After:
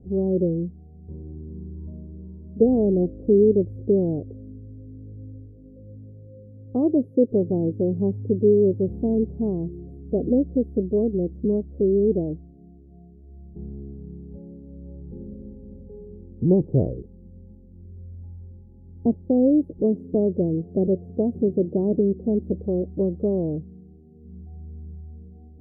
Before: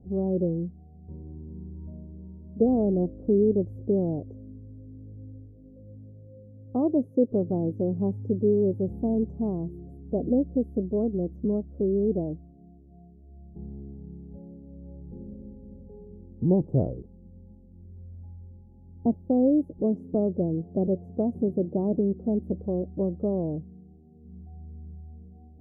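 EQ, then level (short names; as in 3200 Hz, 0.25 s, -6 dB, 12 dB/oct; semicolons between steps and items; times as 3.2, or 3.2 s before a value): low shelf 320 Hz +11 dB; bell 430 Hz +8.5 dB 1.1 oct; -6.5 dB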